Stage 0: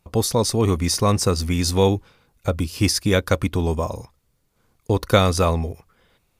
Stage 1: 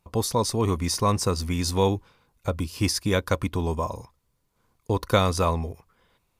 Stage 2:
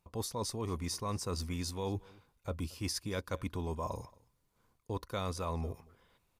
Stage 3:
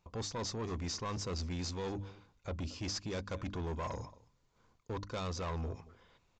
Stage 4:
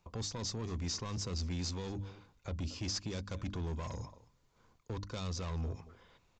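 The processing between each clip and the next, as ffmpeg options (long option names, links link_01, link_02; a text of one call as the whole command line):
ffmpeg -i in.wav -af "equalizer=frequency=1000:width_type=o:width=0.28:gain=7,volume=-5dB" out.wav
ffmpeg -i in.wav -af "areverse,acompressor=threshold=-30dB:ratio=6,areverse,aecho=1:1:226:0.0631,volume=-4dB" out.wav
ffmpeg -i in.wav -af "bandreject=frequency=50:width_type=h:width=6,bandreject=frequency=100:width_type=h:width=6,bandreject=frequency=150:width_type=h:width=6,bandreject=frequency=200:width_type=h:width=6,bandreject=frequency=250:width_type=h:width=6,bandreject=frequency=300:width_type=h:width=6,aresample=16000,asoftclip=type=tanh:threshold=-37.5dB,aresample=44100,volume=3.5dB" out.wav
ffmpeg -i in.wav -filter_complex "[0:a]acrossover=split=250|3000[link_01][link_02][link_03];[link_02]acompressor=threshold=-49dB:ratio=2.5[link_04];[link_01][link_04][link_03]amix=inputs=3:normalize=0,volume=2dB" out.wav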